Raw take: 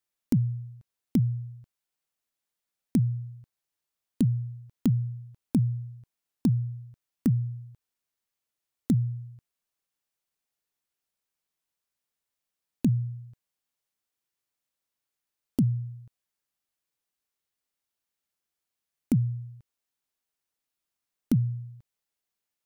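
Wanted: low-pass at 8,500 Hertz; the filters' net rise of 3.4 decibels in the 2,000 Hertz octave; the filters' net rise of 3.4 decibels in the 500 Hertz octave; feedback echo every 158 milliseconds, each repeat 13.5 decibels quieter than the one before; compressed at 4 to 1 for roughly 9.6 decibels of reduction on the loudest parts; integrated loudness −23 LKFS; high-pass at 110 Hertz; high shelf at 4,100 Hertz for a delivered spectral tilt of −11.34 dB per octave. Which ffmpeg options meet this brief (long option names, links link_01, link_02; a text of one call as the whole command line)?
ffmpeg -i in.wav -af "highpass=110,lowpass=8500,equalizer=frequency=500:width_type=o:gain=5,equalizer=frequency=2000:width_type=o:gain=5.5,highshelf=frequency=4100:gain=-6.5,acompressor=threshold=-30dB:ratio=4,aecho=1:1:158|316:0.211|0.0444,volume=14.5dB" out.wav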